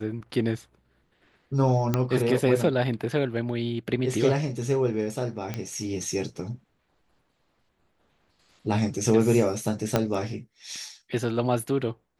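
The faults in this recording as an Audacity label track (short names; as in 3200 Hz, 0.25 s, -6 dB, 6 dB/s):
1.940000	1.940000	pop -10 dBFS
5.540000	5.540000	pop -16 dBFS
9.960000	9.960000	pop -7 dBFS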